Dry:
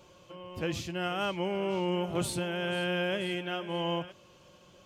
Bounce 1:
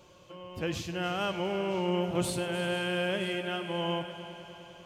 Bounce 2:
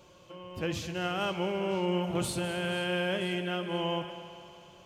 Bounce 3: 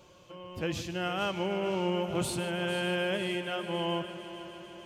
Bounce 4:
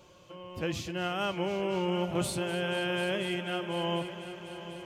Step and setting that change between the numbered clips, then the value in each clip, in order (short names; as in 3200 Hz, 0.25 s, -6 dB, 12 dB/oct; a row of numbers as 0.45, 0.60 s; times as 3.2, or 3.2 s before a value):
multi-head echo, time: 101, 67, 150, 247 ms